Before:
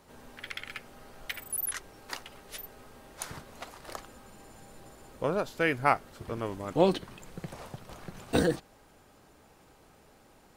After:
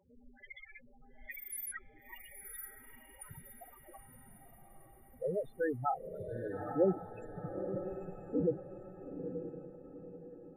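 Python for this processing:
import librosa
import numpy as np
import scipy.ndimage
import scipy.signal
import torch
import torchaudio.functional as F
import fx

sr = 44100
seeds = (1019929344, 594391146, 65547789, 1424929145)

y = fx.spec_topn(x, sr, count=4)
y = fx.over_compress(y, sr, threshold_db=-38.0, ratio=-1.0, at=(1.25, 1.77), fade=0.02)
y = fx.echo_diffused(y, sr, ms=914, feedback_pct=43, wet_db=-7.0)
y = F.gain(torch.from_numpy(y), -2.5).numpy()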